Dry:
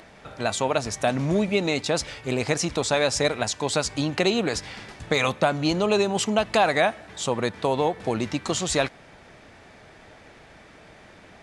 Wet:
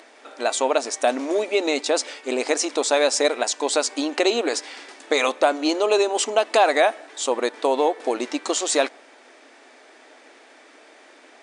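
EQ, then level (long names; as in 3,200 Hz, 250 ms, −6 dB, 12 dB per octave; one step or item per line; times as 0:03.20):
high-shelf EQ 7,600 Hz +9.5 dB
dynamic equaliser 580 Hz, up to +4 dB, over −35 dBFS, Q 0.74
linear-phase brick-wall band-pass 240–10,000 Hz
0.0 dB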